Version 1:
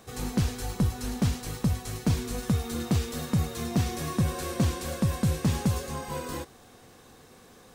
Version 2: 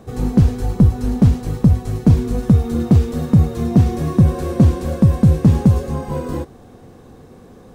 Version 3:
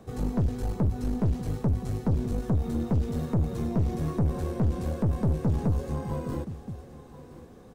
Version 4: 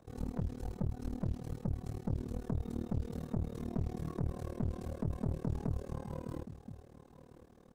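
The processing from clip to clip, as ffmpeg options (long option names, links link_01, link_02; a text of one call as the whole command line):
ffmpeg -i in.wav -af "tiltshelf=frequency=970:gain=9,volume=5.5dB" out.wav
ffmpeg -i in.wav -filter_complex "[0:a]aecho=1:1:1022:0.119,acrossover=split=270[link_01][link_02];[link_02]acompressor=threshold=-27dB:ratio=2.5[link_03];[link_01][link_03]amix=inputs=2:normalize=0,aeval=exprs='(tanh(5.62*val(0)+0.4)-tanh(0.4))/5.62':channel_layout=same,volume=-6dB" out.wav
ffmpeg -i in.wav -af "tremolo=f=38:d=0.974,volume=-6.5dB" out.wav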